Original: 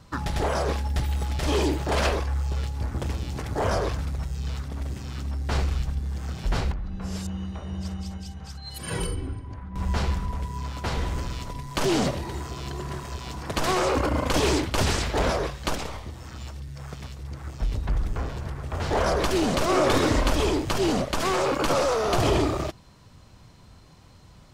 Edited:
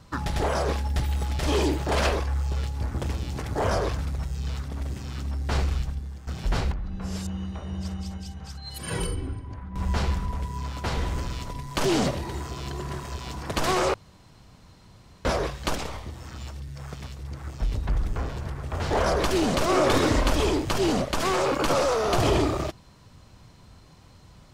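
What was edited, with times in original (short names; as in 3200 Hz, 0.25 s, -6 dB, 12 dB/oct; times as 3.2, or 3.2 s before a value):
5.75–6.27 fade out, to -13.5 dB
13.94–15.25 room tone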